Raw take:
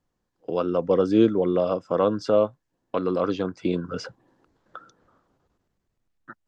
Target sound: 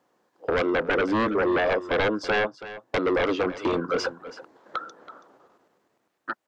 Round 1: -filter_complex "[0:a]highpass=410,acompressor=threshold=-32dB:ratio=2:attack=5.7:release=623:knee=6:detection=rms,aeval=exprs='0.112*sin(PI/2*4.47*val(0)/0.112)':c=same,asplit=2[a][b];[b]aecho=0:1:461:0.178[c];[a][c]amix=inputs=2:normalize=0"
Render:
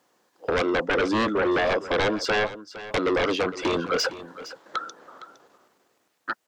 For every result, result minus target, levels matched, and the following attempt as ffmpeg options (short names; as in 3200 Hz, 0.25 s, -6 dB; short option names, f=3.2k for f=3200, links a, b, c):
echo 0.133 s late; 4000 Hz band +4.5 dB
-filter_complex "[0:a]highpass=410,acompressor=threshold=-32dB:ratio=2:attack=5.7:release=623:knee=6:detection=rms,aeval=exprs='0.112*sin(PI/2*4.47*val(0)/0.112)':c=same,asplit=2[a][b];[b]aecho=0:1:328:0.178[c];[a][c]amix=inputs=2:normalize=0"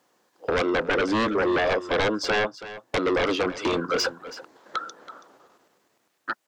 4000 Hz band +4.5 dB
-filter_complex "[0:a]highpass=410,acompressor=threshold=-32dB:ratio=2:attack=5.7:release=623:knee=6:detection=rms,highshelf=f=2.2k:g=-10.5,aeval=exprs='0.112*sin(PI/2*4.47*val(0)/0.112)':c=same,asplit=2[a][b];[b]aecho=0:1:328:0.178[c];[a][c]amix=inputs=2:normalize=0"